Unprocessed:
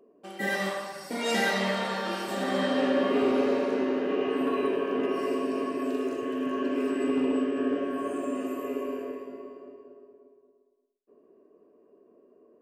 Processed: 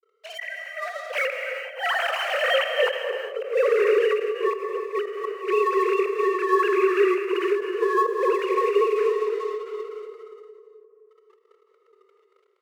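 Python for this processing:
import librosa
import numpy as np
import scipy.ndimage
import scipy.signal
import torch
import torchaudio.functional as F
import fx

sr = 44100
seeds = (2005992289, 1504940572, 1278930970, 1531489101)

p1 = fx.sine_speech(x, sr)
p2 = fx.peak_eq(p1, sr, hz=2600.0, db=11.5, octaves=2.2)
p3 = fx.rider(p2, sr, range_db=5, speed_s=2.0)
p4 = p2 + (p3 * 10.0 ** (2.0 / 20.0))
p5 = np.sign(p4) * np.maximum(np.abs(p4) - 10.0 ** (-39.0 / 20.0), 0.0)
p6 = fx.gate_flip(p5, sr, shuts_db=-9.0, range_db=-25)
p7 = fx.brickwall_highpass(p6, sr, low_hz=360.0)
p8 = fx.echo_wet_lowpass(p7, sr, ms=260, feedback_pct=60, hz=570.0, wet_db=-9)
p9 = fx.rev_gated(p8, sr, seeds[0], gate_ms=420, shape='flat', drr_db=5.5)
y = fx.end_taper(p9, sr, db_per_s=110.0)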